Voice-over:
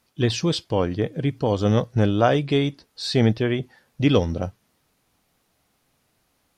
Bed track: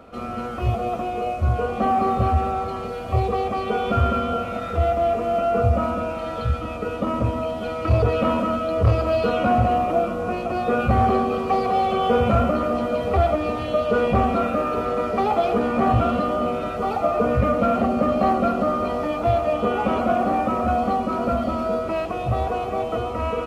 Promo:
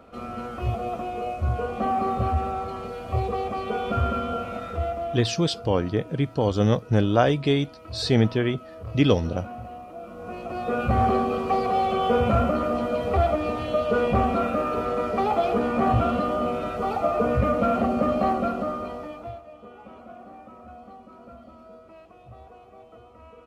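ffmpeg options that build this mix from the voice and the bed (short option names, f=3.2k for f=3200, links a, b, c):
-filter_complex "[0:a]adelay=4950,volume=-1dB[a];[1:a]volume=12.5dB,afade=t=out:st=4.54:d=0.89:silence=0.177828,afade=t=in:st=9.98:d=1.07:silence=0.141254,afade=t=out:st=18.09:d=1.34:silence=0.0891251[b];[a][b]amix=inputs=2:normalize=0"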